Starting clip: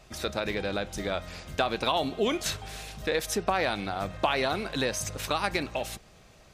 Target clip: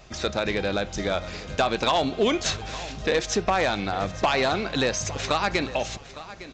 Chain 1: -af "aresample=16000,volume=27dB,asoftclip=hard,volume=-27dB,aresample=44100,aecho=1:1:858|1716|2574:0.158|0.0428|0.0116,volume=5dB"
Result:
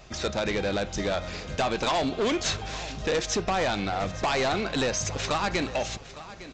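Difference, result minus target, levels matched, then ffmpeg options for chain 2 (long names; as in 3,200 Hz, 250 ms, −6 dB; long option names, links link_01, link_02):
gain into a clipping stage and back: distortion +9 dB
-af "aresample=16000,volume=19.5dB,asoftclip=hard,volume=-19.5dB,aresample=44100,aecho=1:1:858|1716|2574:0.158|0.0428|0.0116,volume=5dB"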